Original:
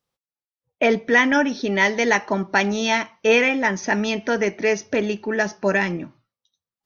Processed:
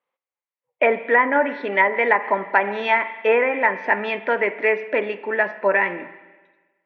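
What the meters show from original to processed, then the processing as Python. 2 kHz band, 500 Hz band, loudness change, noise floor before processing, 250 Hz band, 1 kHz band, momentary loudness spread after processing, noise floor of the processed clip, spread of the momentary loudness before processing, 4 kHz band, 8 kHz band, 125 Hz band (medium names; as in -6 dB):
+0.5 dB, +1.0 dB, 0.0 dB, under -85 dBFS, -8.5 dB, +4.0 dB, 6 LU, under -85 dBFS, 7 LU, -9.0 dB, no reading, under -10 dB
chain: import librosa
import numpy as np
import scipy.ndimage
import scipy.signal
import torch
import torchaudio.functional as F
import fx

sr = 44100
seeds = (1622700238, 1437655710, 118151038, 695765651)

y = fx.cabinet(x, sr, low_hz=400.0, low_slope=12, high_hz=2900.0, hz=(540.0, 1000.0, 2100.0), db=(5, 7, 7))
y = fx.rev_spring(y, sr, rt60_s=1.3, pass_ms=(39, 46), chirp_ms=45, drr_db=13.5)
y = fx.env_lowpass_down(y, sr, base_hz=1300.0, full_db=-10.5)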